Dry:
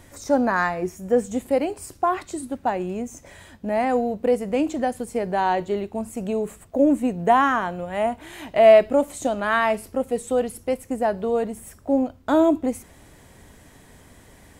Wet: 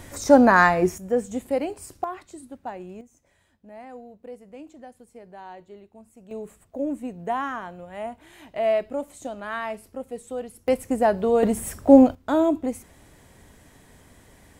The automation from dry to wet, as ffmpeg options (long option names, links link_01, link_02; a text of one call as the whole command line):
ffmpeg -i in.wav -af "asetnsamples=nb_out_samples=441:pad=0,asendcmd='0.98 volume volume -3.5dB;2.04 volume volume -11dB;3.01 volume volume -20dB;6.31 volume volume -10dB;10.68 volume volume 2.5dB;11.43 volume volume 9dB;12.15 volume volume -3dB',volume=6dB" out.wav